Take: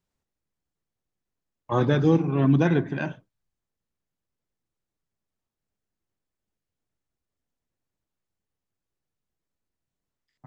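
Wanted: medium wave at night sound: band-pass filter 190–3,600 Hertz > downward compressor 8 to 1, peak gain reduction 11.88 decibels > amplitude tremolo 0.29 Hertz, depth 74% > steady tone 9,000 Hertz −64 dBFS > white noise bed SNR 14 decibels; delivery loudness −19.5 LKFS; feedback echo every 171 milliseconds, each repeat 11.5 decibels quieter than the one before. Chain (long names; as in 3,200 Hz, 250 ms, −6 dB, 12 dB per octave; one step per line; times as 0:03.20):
band-pass filter 190–3,600 Hz
repeating echo 171 ms, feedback 27%, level −11.5 dB
downward compressor 8 to 1, threshold −27 dBFS
amplitude tremolo 0.29 Hz, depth 74%
steady tone 9,000 Hz −64 dBFS
white noise bed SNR 14 dB
level +19 dB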